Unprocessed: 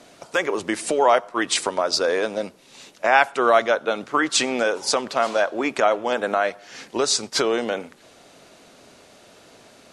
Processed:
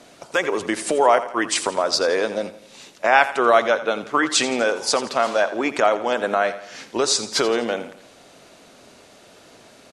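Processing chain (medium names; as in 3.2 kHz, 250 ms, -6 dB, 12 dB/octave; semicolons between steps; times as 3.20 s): 1.06–1.56 s: peaking EQ 3.7 kHz -9.5 dB 0.35 oct; on a send: feedback delay 84 ms, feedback 47%, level -14 dB; on the sum: trim +1 dB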